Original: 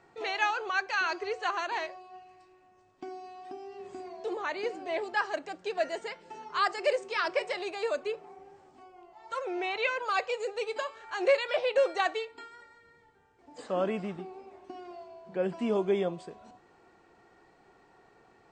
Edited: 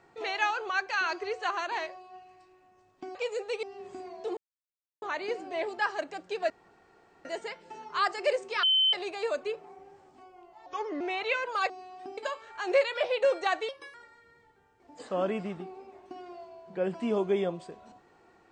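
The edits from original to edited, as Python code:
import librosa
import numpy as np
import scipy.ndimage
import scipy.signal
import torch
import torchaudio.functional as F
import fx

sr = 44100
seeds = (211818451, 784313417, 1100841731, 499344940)

y = fx.edit(x, sr, fx.swap(start_s=3.15, length_s=0.48, other_s=10.23, other_length_s=0.48),
    fx.insert_silence(at_s=4.37, length_s=0.65),
    fx.insert_room_tone(at_s=5.85, length_s=0.75),
    fx.bleep(start_s=7.23, length_s=0.3, hz=3070.0, db=-20.5),
    fx.speed_span(start_s=9.26, length_s=0.28, speed=0.81),
    fx.speed_span(start_s=12.22, length_s=0.31, speed=1.21), tone=tone)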